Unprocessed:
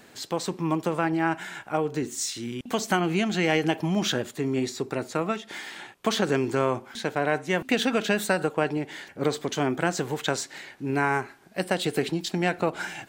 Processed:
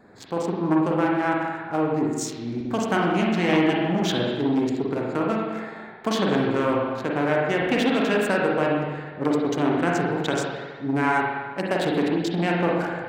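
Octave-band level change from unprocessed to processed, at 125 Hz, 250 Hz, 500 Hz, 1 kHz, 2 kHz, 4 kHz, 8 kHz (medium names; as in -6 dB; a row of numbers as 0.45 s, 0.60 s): +3.0 dB, +5.0 dB, +3.5 dB, +3.5 dB, +2.0 dB, -1.0 dB, -4.5 dB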